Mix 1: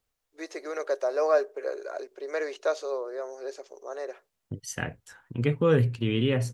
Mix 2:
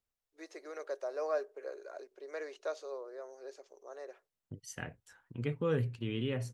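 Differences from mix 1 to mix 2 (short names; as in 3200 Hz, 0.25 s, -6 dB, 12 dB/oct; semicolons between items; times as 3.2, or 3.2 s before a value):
first voice -11.0 dB; second voice -10.0 dB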